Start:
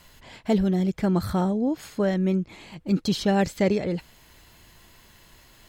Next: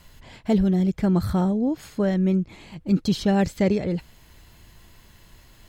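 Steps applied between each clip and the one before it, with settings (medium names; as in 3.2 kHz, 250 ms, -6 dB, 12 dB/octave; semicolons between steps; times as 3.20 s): bass shelf 200 Hz +8 dB; trim -1.5 dB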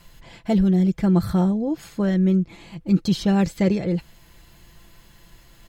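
comb 5.9 ms, depth 45%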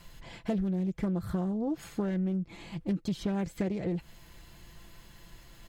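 dynamic bell 4.7 kHz, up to -6 dB, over -51 dBFS, Q 1.5; compression 16:1, threshold -25 dBFS, peak gain reduction 13.5 dB; loudspeaker Doppler distortion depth 0.3 ms; trim -2 dB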